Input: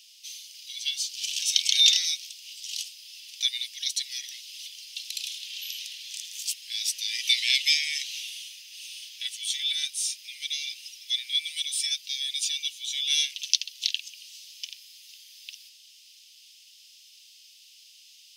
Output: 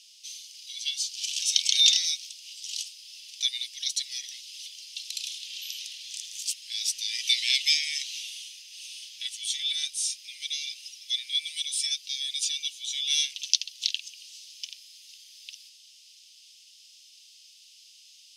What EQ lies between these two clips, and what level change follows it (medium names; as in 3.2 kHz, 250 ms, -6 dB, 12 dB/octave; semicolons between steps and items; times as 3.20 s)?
low-pass 9.6 kHz 12 dB/octave; treble shelf 2.9 kHz +9 dB; -6.5 dB